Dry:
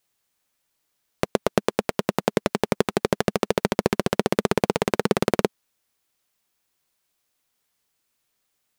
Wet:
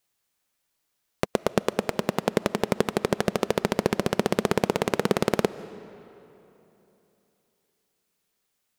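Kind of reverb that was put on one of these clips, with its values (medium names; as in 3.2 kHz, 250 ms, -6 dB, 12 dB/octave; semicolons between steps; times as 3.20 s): algorithmic reverb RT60 3.2 s, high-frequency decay 0.7×, pre-delay 105 ms, DRR 16.5 dB; trim -2 dB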